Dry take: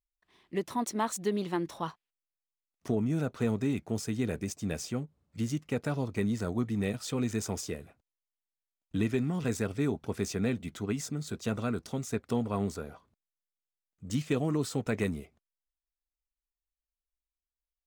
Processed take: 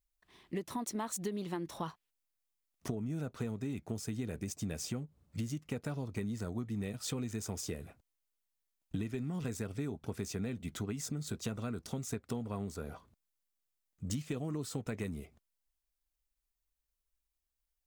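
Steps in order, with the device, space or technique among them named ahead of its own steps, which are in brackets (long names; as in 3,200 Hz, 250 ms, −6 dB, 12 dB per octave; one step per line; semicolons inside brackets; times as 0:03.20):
ASMR close-microphone chain (low-shelf EQ 170 Hz +5.5 dB; downward compressor 6 to 1, threshold −37 dBFS, peak gain reduction 14.5 dB; high-shelf EQ 6,900 Hz +5.5 dB)
level +2 dB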